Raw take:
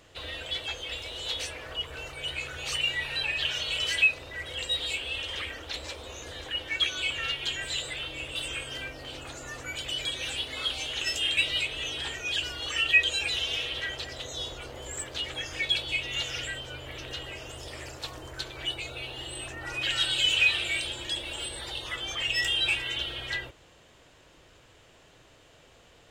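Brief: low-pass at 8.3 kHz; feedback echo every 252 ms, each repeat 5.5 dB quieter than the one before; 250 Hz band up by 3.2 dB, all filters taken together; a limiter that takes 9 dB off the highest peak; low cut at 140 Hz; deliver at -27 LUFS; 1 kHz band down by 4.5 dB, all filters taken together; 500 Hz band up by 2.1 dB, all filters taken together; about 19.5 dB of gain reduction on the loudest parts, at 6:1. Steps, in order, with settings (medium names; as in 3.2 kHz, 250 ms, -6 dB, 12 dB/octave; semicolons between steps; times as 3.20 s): high-pass 140 Hz; low-pass 8.3 kHz; peaking EQ 250 Hz +4 dB; peaking EQ 500 Hz +3.5 dB; peaking EQ 1 kHz -8 dB; compression 6:1, threshold -40 dBFS; peak limiter -36.5 dBFS; feedback delay 252 ms, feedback 53%, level -5.5 dB; trim +15 dB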